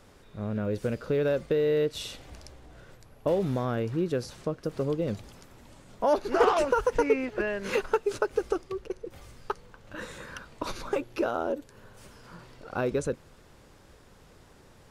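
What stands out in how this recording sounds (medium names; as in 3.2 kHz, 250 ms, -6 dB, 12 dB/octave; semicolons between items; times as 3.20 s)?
noise floor -56 dBFS; spectral tilt -5.0 dB/octave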